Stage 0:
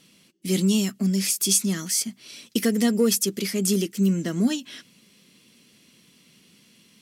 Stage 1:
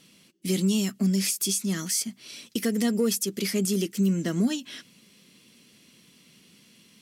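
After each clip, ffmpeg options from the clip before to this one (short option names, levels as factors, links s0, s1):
-af "alimiter=limit=0.168:level=0:latency=1:release=245"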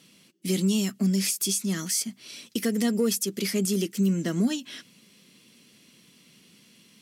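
-af "highpass=79"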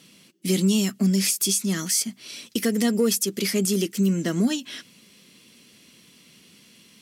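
-af "asubboost=boost=3.5:cutoff=67,volume=1.58"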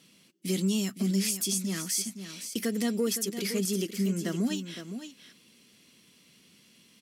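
-af "aecho=1:1:513:0.316,volume=0.447"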